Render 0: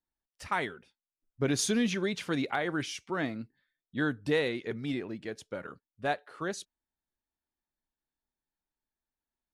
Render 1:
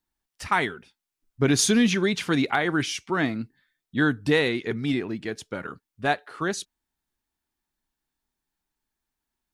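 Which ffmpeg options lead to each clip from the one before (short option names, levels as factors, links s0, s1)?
-af "equalizer=f=550:t=o:w=0.46:g=-6.5,volume=2.66"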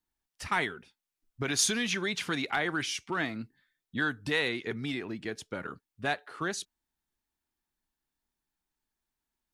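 -filter_complex "[0:a]acrossover=split=620|1300[s0][s1][s2];[s0]acompressor=threshold=0.0316:ratio=6[s3];[s1]asoftclip=type=tanh:threshold=0.0316[s4];[s3][s4][s2]amix=inputs=3:normalize=0,volume=0.668"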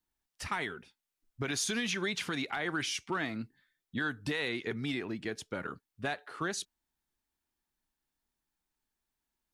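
-af "alimiter=limit=0.0668:level=0:latency=1:release=93"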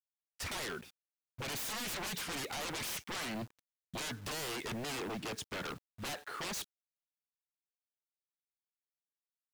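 -af "aeval=exprs='0.0126*(abs(mod(val(0)/0.0126+3,4)-2)-1)':c=same,acrusher=bits=9:mix=0:aa=0.000001,volume=1.5"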